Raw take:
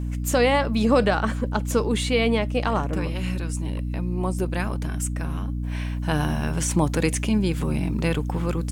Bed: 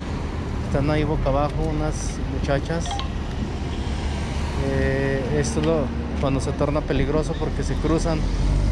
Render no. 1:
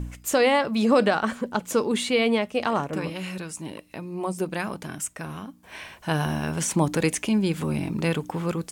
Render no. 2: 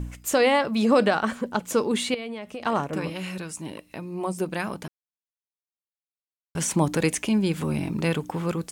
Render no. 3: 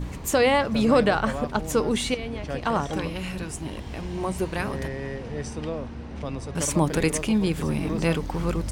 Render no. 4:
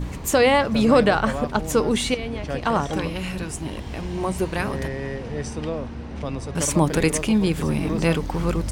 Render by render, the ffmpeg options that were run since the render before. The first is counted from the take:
-af "bandreject=f=60:t=h:w=4,bandreject=f=120:t=h:w=4,bandreject=f=180:t=h:w=4,bandreject=f=240:t=h:w=4,bandreject=f=300:t=h:w=4"
-filter_complex "[0:a]asettb=1/sr,asplit=3[a][b][c];[a]atrim=end=2.144[d];[b]atrim=start=2.14:end=2.66,asetpts=PTS-STARTPTS,afade=t=in:d=0.004:c=qsin,afade=t=out:st=0.516:d=0.004:c=qsin,acompressor=threshold=-30dB:ratio=12:attack=3.2:release=140:knee=1:detection=peak[e];[c]atrim=start=2.656[f];[d][e]acrossfade=d=0.004:c1=hsin:c2=qsin[g];[g][f]acrossfade=d=0.004:c1=qsin:c2=hsin,asplit=3[h][i][j];[h]atrim=end=4.88,asetpts=PTS-STARTPTS,afade=t=out:st=4.876:d=0.004:c=hsin[k];[i]atrim=start=4.88:end=6.55,asetpts=PTS-STARTPTS,volume=0[l];[j]atrim=start=6.55,asetpts=PTS-STARTPTS,afade=t=in:d=0.004:c=hsin[m];[k][l][m]concat=n=3:v=0:a=1"
-filter_complex "[1:a]volume=-10.5dB[a];[0:a][a]amix=inputs=2:normalize=0"
-af "volume=3dB"

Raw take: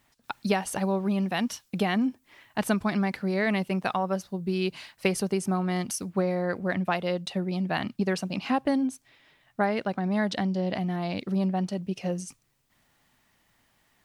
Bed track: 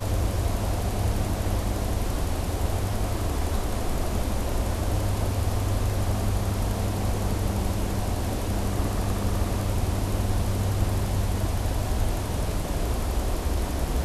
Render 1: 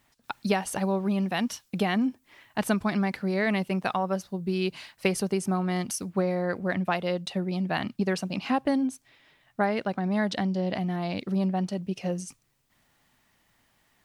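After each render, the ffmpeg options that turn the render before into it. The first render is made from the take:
-af anull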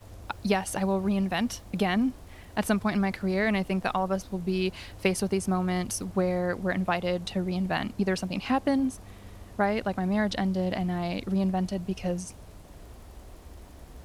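-filter_complex "[1:a]volume=-20.5dB[a];[0:a][a]amix=inputs=2:normalize=0"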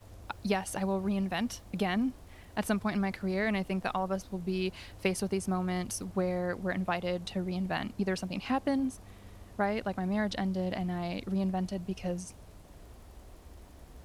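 -af "volume=-4.5dB"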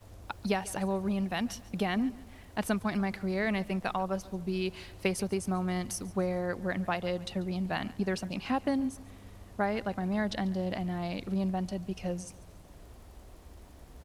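-af "aecho=1:1:142|284|426:0.0944|0.0406|0.0175"

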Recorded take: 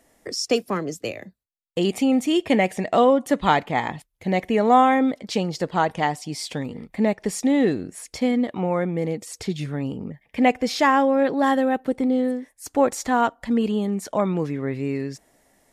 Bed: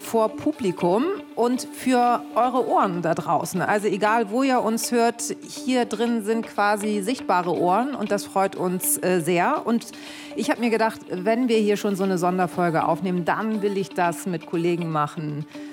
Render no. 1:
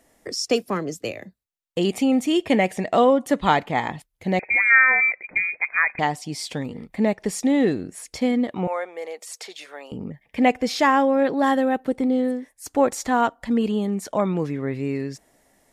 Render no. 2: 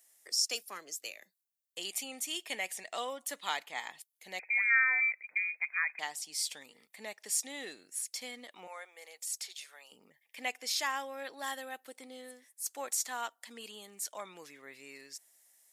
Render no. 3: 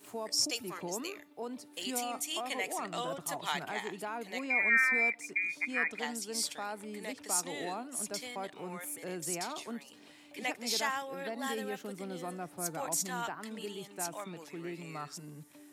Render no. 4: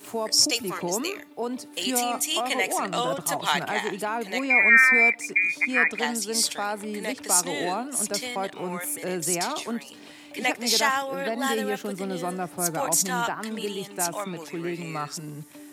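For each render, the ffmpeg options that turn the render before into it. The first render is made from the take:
-filter_complex "[0:a]asettb=1/sr,asplit=3[a][b][c];[a]atrim=end=4.394[d];[b]atrim=start=4.39:end=5.99,asetpts=PTS-STARTPTS,afade=t=in:d=0.004:c=qsin,afade=t=out:st=1.596:d=0.004:c=qsin,lowpass=f=2.2k:t=q:w=0.5098,lowpass=f=2.2k:t=q:w=0.6013,lowpass=f=2.2k:t=q:w=0.9,lowpass=f=2.2k:t=q:w=2.563,afreqshift=-2600[e];[c]atrim=start=5.986[f];[d][e]acrossfade=d=0.004:c1=hsin:c2=qsin[g];[g][f]acrossfade=d=0.004:c1=qsin:c2=hsin,asettb=1/sr,asplit=3[h][i][j];[h]atrim=end=8.674[k];[i]atrim=start=8.67:end=9.92,asetpts=PTS-STARTPTS,afade=t=in:d=0.004:c=qsin,afade=t=out:st=1.246:d=0.004:c=qsin,highpass=f=540:w=0.5412,highpass=f=540:w=1.3066[l];[j]atrim=start=9.916[m];[k][l]acrossfade=d=0.004:c1=hsin:c2=qsin[n];[n][m]acrossfade=d=0.004:c1=qsin:c2=hsin"
-af "highpass=f=300:p=1,aderivative"
-filter_complex "[1:a]volume=-19.5dB[a];[0:a][a]amix=inputs=2:normalize=0"
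-af "volume=10.5dB"

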